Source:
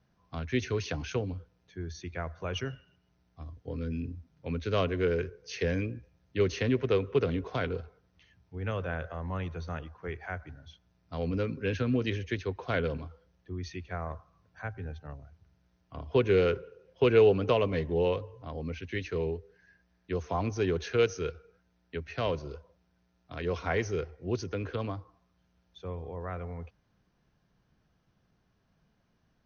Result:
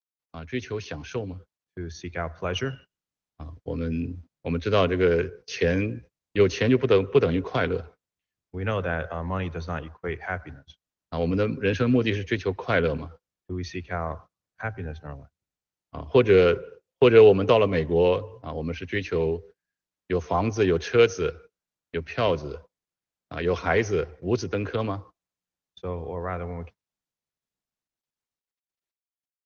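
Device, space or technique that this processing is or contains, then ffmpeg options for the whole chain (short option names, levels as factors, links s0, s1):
video call: -af "highpass=f=110:p=1,dynaudnorm=f=310:g=11:m=2.51,agate=range=0.02:threshold=0.00708:ratio=16:detection=peak" -ar 48000 -c:a libopus -b:a 20k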